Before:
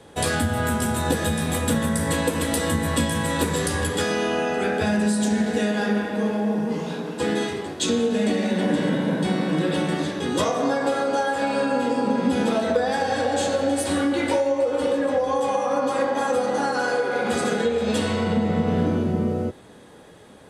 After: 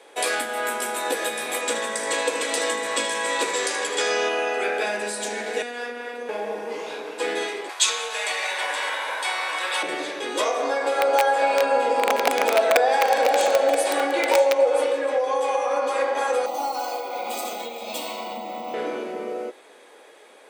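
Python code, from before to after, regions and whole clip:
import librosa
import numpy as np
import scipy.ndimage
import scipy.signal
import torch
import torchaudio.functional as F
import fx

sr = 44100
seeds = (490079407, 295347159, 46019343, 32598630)

y = fx.chain(x, sr, fx.lowpass_res(hz=6900.0, q=1.6),
    fx.echo_single(ms=77, db=-10.0), at=(1.61, 4.29))
y = fx.chain(y, sr, fx.robotise(hz=241.0),
    fx.comb_fb(f0_hz=74.0, decay_s=1.8, harmonics='all', damping=0.0, mix_pct=50),
    fx.env_flatten(amount_pct=50), at=(5.62, 6.29))
y = fx.chain(y, sr, fx.highpass_res(hz=990.0, q=2.3),
    fx.high_shelf(hz=3400.0, db=8.5), at=(7.69, 9.83))
y = fx.chain(y, sr, fx.overflow_wrap(gain_db=12.5),
    fx.peak_eq(hz=700.0, db=6.5, octaves=1.0),
    fx.echo_single(ms=977, db=-10.5), at=(10.98, 14.84))
y = fx.chain(y, sr, fx.resample_bad(factor=2, down='none', up='hold'),
    fx.fixed_phaser(hz=440.0, stages=6), at=(16.46, 18.74))
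y = scipy.signal.sosfilt(scipy.signal.butter(4, 390.0, 'highpass', fs=sr, output='sos'), y)
y = fx.peak_eq(y, sr, hz=2300.0, db=8.5, octaves=0.29)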